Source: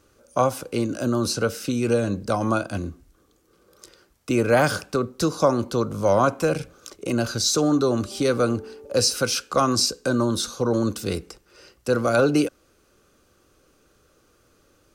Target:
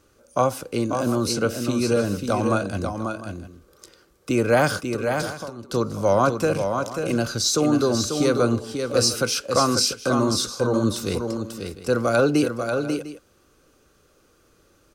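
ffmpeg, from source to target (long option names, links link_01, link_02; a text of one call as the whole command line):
ffmpeg -i in.wav -filter_complex "[0:a]asplit=3[link_01][link_02][link_03];[link_01]afade=type=out:start_time=4.79:duration=0.02[link_04];[link_02]acompressor=threshold=-32dB:ratio=10,afade=type=in:start_time=4.79:duration=0.02,afade=type=out:start_time=5.69:duration=0.02[link_05];[link_03]afade=type=in:start_time=5.69:duration=0.02[link_06];[link_04][link_05][link_06]amix=inputs=3:normalize=0,aecho=1:1:541|701:0.501|0.15" out.wav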